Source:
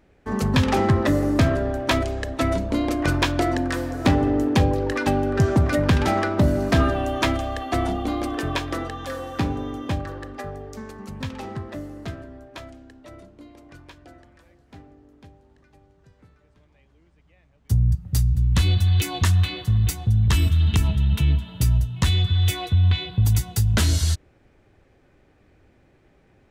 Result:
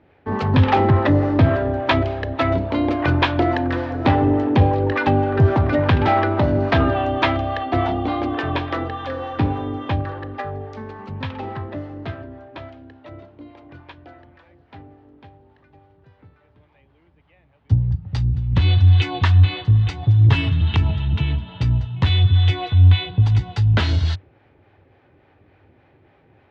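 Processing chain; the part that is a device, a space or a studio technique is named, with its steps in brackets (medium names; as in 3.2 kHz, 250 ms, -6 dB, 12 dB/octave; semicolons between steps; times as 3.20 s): 20.02–20.61 s: comb 7.2 ms, depth 90%; guitar amplifier with harmonic tremolo (harmonic tremolo 3.5 Hz, depth 50%, crossover 550 Hz; saturation -11.5 dBFS, distortion -23 dB; cabinet simulation 91–3700 Hz, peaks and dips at 95 Hz +7 dB, 200 Hz -6 dB, 860 Hz +5 dB); trim +6 dB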